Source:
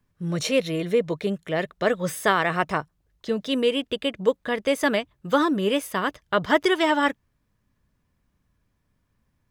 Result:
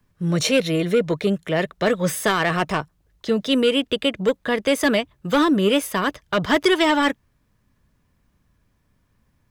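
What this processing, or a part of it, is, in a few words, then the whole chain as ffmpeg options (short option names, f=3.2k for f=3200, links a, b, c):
one-band saturation: -filter_complex "[0:a]acrossover=split=320|2300[a][b][c];[b]asoftclip=type=tanh:threshold=-22.5dB[d];[a][d][c]amix=inputs=3:normalize=0,volume=6dB"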